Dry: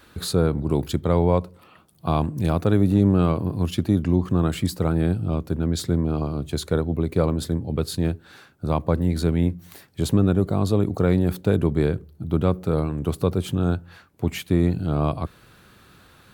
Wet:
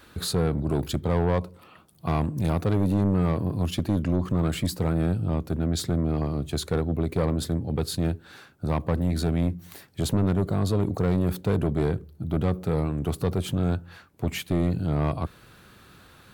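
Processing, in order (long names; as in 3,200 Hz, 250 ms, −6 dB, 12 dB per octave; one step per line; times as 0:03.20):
soft clipping −17 dBFS, distortion −11 dB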